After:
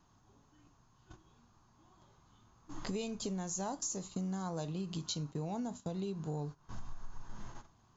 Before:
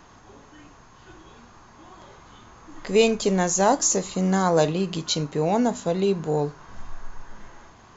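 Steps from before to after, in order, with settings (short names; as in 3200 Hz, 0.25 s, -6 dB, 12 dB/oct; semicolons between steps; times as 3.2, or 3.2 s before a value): graphic EQ 125/500/2000 Hz +5/-7/-9 dB; compressor 8:1, threshold -36 dBFS, peak gain reduction 18 dB; gate -44 dBFS, range -16 dB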